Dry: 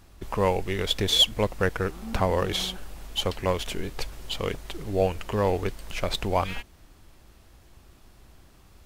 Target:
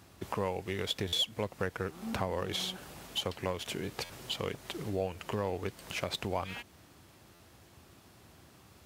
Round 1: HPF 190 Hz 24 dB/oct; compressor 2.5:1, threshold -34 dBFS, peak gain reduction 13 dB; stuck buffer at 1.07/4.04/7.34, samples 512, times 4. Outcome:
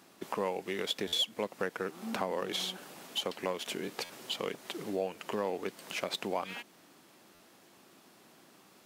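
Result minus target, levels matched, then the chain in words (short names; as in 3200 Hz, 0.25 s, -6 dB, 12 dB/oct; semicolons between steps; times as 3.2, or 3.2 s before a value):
125 Hz band -10.0 dB
HPF 85 Hz 24 dB/oct; compressor 2.5:1, threshold -34 dBFS, peak gain reduction 12.5 dB; stuck buffer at 1.07/4.04/7.34, samples 512, times 4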